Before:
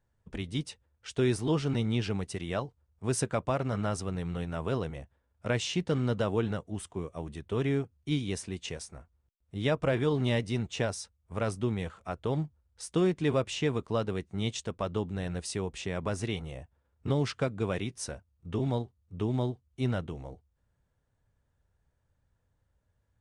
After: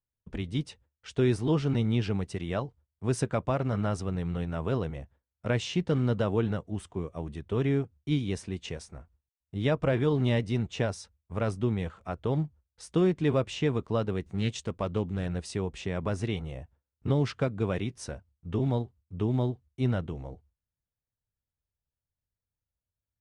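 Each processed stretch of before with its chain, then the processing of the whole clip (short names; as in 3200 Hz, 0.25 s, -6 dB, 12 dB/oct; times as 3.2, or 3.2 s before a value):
14.26–15.26 high shelf 9100 Hz +8 dB + upward compressor, threshold -48 dBFS + Doppler distortion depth 0.19 ms
whole clip: low shelf 350 Hz +3.5 dB; gate with hold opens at -57 dBFS; high shelf 7400 Hz -10.5 dB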